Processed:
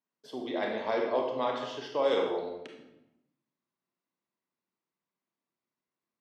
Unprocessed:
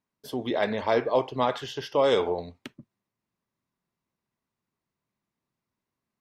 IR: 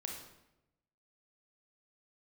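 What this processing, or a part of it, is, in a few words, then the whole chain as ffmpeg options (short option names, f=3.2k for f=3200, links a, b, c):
supermarket ceiling speaker: -filter_complex "[0:a]highpass=230,lowpass=6.4k[a];[1:a]atrim=start_sample=2205[b];[a][b]afir=irnorm=-1:irlink=0,volume=-3.5dB"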